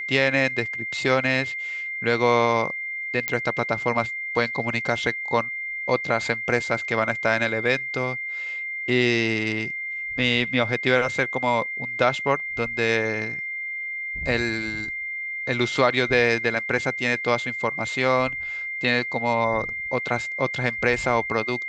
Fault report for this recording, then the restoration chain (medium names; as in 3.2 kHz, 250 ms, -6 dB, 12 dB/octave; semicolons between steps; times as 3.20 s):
whine 2.1 kHz -28 dBFS
3.28 s: pop -8 dBFS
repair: de-click; band-stop 2.1 kHz, Q 30